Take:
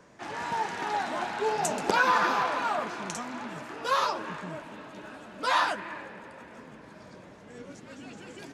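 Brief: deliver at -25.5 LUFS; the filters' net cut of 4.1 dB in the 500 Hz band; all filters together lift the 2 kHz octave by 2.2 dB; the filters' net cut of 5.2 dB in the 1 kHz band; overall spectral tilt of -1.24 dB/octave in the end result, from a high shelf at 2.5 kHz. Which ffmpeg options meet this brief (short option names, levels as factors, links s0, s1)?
-af "equalizer=f=500:t=o:g=-3.5,equalizer=f=1000:t=o:g=-7.5,equalizer=f=2000:t=o:g=3.5,highshelf=f=2500:g=7.5,volume=1.58"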